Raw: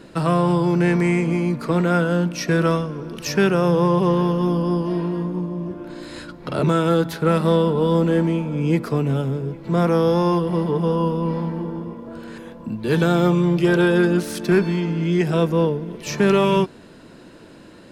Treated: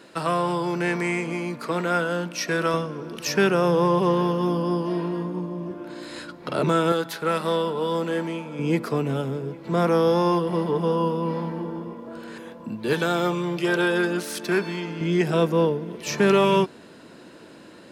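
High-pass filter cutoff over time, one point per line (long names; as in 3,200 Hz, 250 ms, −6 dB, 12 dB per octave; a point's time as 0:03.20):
high-pass filter 6 dB per octave
620 Hz
from 0:02.74 280 Hz
from 0:06.92 790 Hz
from 0:08.59 280 Hz
from 0:12.93 630 Hz
from 0:15.01 220 Hz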